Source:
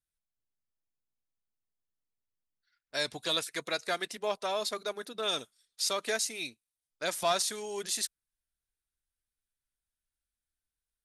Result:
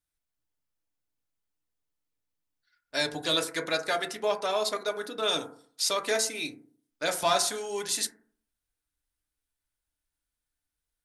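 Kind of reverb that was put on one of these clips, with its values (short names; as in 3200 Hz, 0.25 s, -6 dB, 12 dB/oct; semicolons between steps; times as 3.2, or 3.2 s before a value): FDN reverb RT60 0.52 s, low-frequency decay 1.1×, high-frequency decay 0.25×, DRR 4 dB; gain +3 dB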